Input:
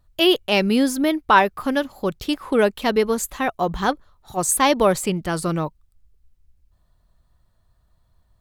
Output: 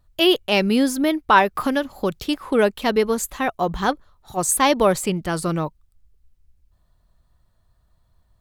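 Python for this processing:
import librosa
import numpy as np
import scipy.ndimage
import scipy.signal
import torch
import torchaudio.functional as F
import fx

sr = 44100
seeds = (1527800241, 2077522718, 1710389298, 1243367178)

y = fx.band_squash(x, sr, depth_pct=70, at=(1.55, 2.23))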